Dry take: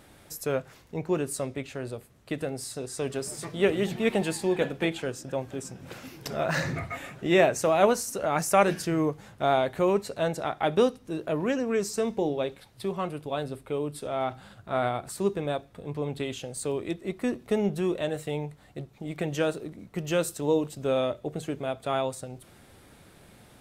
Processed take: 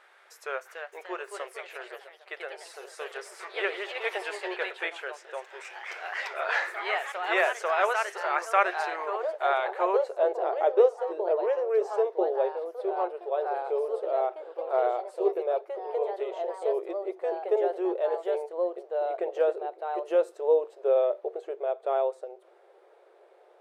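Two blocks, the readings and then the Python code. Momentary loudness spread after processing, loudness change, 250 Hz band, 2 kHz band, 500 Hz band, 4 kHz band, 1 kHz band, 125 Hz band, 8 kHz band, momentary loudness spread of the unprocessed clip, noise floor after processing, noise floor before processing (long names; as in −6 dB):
14 LU, 0.0 dB, −12.0 dB, +2.5 dB, +1.0 dB, −4.5 dB, +1.5 dB, below −40 dB, below −10 dB, 13 LU, −58 dBFS, −55 dBFS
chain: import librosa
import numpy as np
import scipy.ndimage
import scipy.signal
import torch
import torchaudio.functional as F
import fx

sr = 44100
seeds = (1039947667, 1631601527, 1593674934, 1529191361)

y = fx.filter_sweep_bandpass(x, sr, from_hz=1500.0, to_hz=540.0, start_s=9.7, end_s=10.29, q=1.4)
y = fx.echo_pitch(y, sr, ms=340, semitones=2, count=3, db_per_echo=-6.0)
y = fx.brickwall_highpass(y, sr, low_hz=340.0)
y = y * 10.0 ** (4.0 / 20.0)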